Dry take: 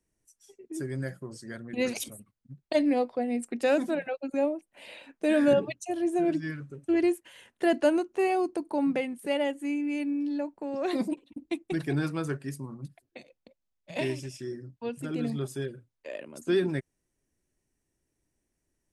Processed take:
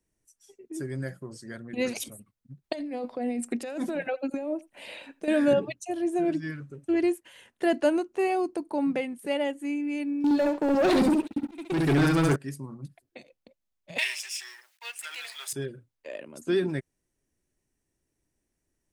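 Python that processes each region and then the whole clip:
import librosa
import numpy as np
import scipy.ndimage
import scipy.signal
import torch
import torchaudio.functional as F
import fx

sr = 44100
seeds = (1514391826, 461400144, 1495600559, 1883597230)

y = fx.chain(x, sr, fx.over_compress(threshold_db=-31.0, ratio=-1.0),
    fx.echo_single(ms=84, db=-23.5), at=(2.64, 5.28))
y = fx.chain(y, sr, fx.echo_feedback(ms=68, feedback_pct=17, wet_db=-3.5),
    fx.leveller(passes=3),
    fx.auto_swell(attack_ms=419.0), at=(10.24, 12.36))
y = fx.chain(y, sr, fx.law_mismatch(coded='mu'),
    fx.cheby2_highpass(hz=190.0, order=4, stop_db=70),
    fx.high_shelf_res(hz=1500.0, db=8.0, q=1.5), at=(13.98, 15.53))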